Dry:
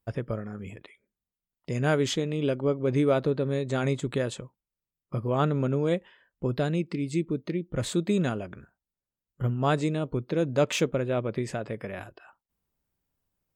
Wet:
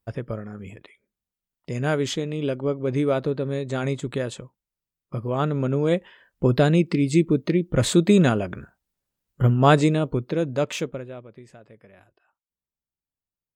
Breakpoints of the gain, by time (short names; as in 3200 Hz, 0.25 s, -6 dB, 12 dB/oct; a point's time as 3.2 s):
5.44 s +1 dB
6.46 s +9 dB
9.78 s +9 dB
10.91 s -3.5 dB
11.29 s -15 dB